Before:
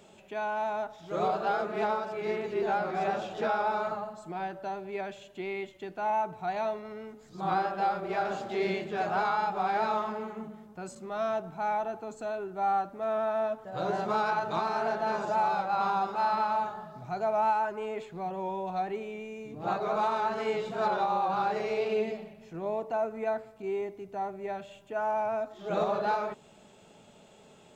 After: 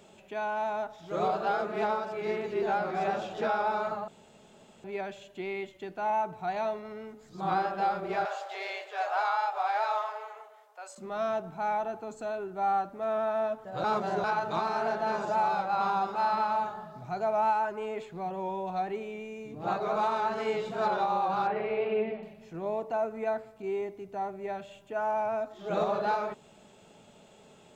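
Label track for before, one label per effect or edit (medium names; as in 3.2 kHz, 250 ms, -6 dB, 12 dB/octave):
4.080000	4.840000	room tone
8.250000	10.980000	steep high-pass 540 Hz
13.840000	14.240000	reverse
21.470000	22.230000	low-pass 2.9 kHz 24 dB/octave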